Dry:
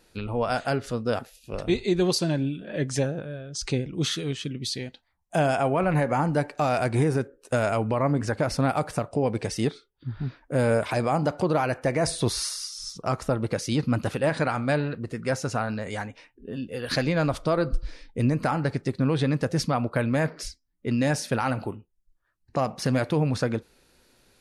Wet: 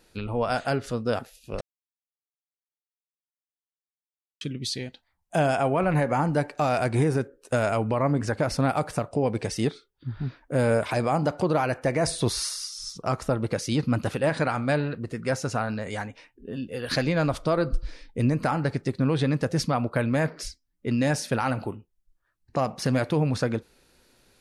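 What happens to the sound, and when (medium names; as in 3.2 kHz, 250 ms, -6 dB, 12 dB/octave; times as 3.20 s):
1.61–4.41 s: mute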